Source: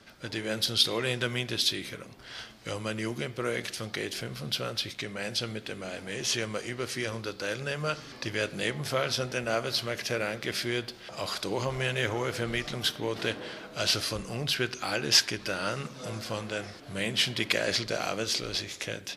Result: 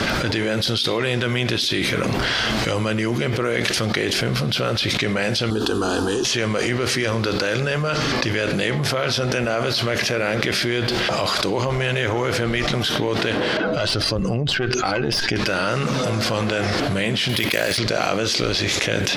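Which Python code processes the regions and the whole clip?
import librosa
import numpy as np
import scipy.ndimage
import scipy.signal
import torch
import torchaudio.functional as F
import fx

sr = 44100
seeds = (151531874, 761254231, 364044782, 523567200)

y = fx.chain(x, sr, fx.peak_eq(hz=2000.0, db=-13.0, octaves=0.25),
    fx.fixed_phaser(hz=590.0, stages=6), at=(5.5, 6.25))
y = fx.chain(y, sr, fx.spec_expand(power=1.6),
    fx.notch(hz=2400.0, q=22.0),
    fx.tube_stage(drive_db=21.0, bias=0.7), at=(13.57, 15.36))
y = fx.chain(y, sr, fx.resample_bad(factor=3, down='none', up='hold'),
    fx.peak_eq(hz=8100.0, db=7.5, octaves=2.7),
    fx.over_compress(threshold_db=-32.0, ratio=-1.0), at=(17.29, 17.78))
y = fx.high_shelf(y, sr, hz=7000.0, db=-10.0)
y = fx.env_flatten(y, sr, amount_pct=100)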